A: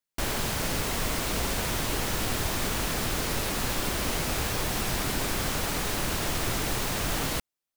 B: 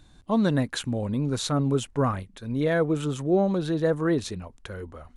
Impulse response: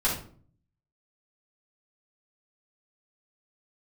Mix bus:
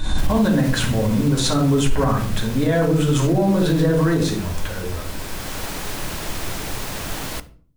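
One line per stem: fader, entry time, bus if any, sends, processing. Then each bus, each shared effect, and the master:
-0.5 dB, 0.00 s, send -21.5 dB, auto duck -7 dB, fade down 1.30 s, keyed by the second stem
-0.5 dB, 0.00 s, send -4.5 dB, backwards sustainer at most 42 dB/s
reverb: on, RT60 0.50 s, pre-delay 3 ms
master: limiter -9.5 dBFS, peak gain reduction 9 dB

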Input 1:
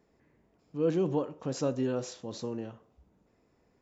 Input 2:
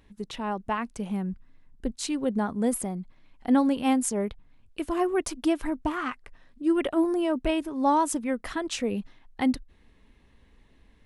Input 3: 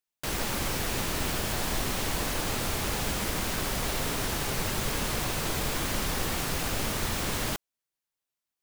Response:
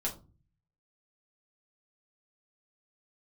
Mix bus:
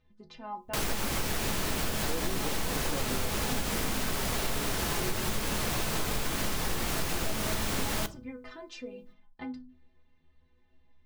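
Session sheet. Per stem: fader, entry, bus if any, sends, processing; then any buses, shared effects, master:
-5.5 dB, 1.30 s, no send, dry
-1.5 dB, 0.00 s, send -10 dB, Chebyshev low-pass 5300 Hz, order 3; compressor, threshold -28 dBFS, peak gain reduction 10.5 dB; metallic resonator 75 Hz, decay 0.47 s, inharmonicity 0.03
+0.5 dB, 0.50 s, send -12 dB, dry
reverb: on, RT60 0.35 s, pre-delay 5 ms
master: compressor, threshold -26 dBFS, peak gain reduction 7.5 dB

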